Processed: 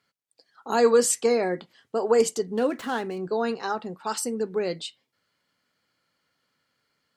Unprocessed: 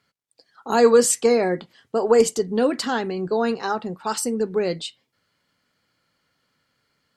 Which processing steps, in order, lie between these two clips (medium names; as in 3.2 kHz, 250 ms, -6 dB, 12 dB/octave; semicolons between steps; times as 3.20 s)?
2.49–3.27 s: median filter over 9 samples; bass shelf 140 Hz -7.5 dB; trim -3.5 dB